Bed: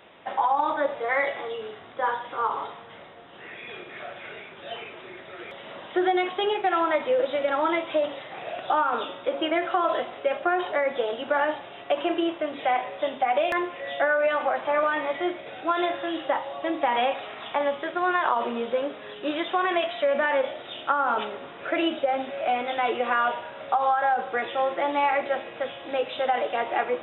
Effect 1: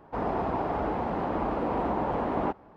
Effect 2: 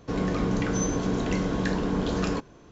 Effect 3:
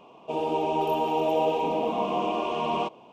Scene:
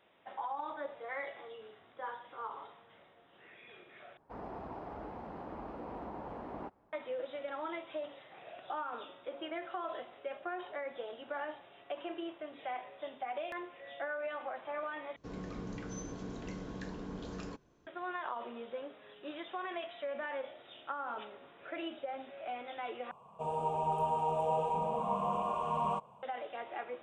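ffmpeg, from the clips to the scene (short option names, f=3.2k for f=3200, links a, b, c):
-filter_complex "[0:a]volume=-16dB[a];[3:a]firequalizer=gain_entry='entry(140,0);entry(200,-3);entry(290,-25);entry(480,-8);entry(680,-8);entry(1100,0);entry(2100,-14);entry(5100,-20);entry(8600,4);entry(13000,-25)':delay=0.05:min_phase=1[b];[a]asplit=4[c][d][e][f];[c]atrim=end=4.174[g];[1:a]atrim=end=2.76,asetpts=PTS-STARTPTS,volume=-15.5dB[h];[d]atrim=start=6.926:end=15.164[i];[2:a]atrim=end=2.71,asetpts=PTS-STARTPTS,volume=-16.5dB[j];[e]atrim=start=17.866:end=23.114[k];[b]atrim=end=3.12,asetpts=PTS-STARTPTS,volume=-1dB[l];[f]atrim=start=26.226[m];[g][h]acrossfade=d=0.004:c1=hsin:c2=hsin[n];[n][i]acrossfade=d=0.004:c1=hsin:c2=hsin[o];[o][j]acrossfade=d=0.004:c1=hsin:c2=hsin[p];[p][k]acrossfade=d=0.004:c1=hsin:c2=hsin[q];[q][l]acrossfade=d=0.004:c1=hsin:c2=hsin[r];[r][m]acrossfade=d=0.004:c1=hsin:c2=hsin"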